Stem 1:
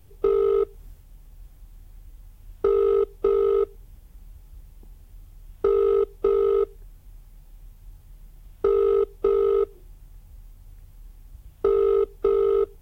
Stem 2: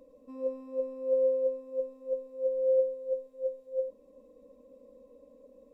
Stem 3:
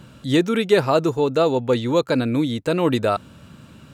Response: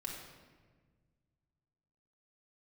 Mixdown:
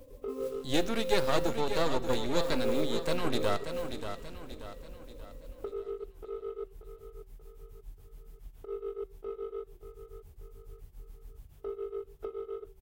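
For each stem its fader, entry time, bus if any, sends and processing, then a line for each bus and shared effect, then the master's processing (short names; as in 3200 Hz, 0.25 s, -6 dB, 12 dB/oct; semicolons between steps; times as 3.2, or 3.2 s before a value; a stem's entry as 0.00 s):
-2.0 dB, 0.00 s, no send, echo send -11 dB, limiter -22 dBFS, peak gain reduction 10.5 dB; compressor 3:1, threshold -33 dBFS, peak gain reduction 6.5 dB; beating tremolo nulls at 7.1 Hz
+1.5 dB, 0.00 s, no send, no echo send, compressor 2.5:1, threshold -40 dBFS, peak gain reduction 12 dB; modulation noise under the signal 20 dB
-9.5 dB, 0.40 s, send -15 dB, echo send -7.5 dB, high shelf 2700 Hz +7.5 dB; half-wave rectifier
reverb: on, RT60 1.5 s, pre-delay 4 ms
echo: feedback echo 0.584 s, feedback 45%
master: de-hum 192.3 Hz, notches 27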